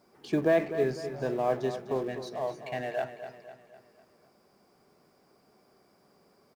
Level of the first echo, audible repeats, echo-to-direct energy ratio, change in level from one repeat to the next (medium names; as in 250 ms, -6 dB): -11.0 dB, 4, -10.0 dB, -6.5 dB